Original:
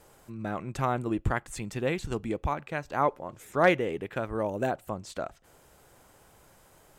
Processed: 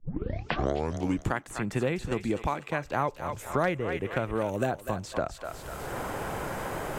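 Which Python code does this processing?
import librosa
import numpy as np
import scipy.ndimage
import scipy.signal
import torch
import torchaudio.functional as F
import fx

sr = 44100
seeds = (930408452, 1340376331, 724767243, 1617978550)

y = fx.tape_start_head(x, sr, length_s=1.31)
y = fx.echo_thinned(y, sr, ms=247, feedback_pct=36, hz=940.0, wet_db=-9.0)
y = fx.band_squash(y, sr, depth_pct=100)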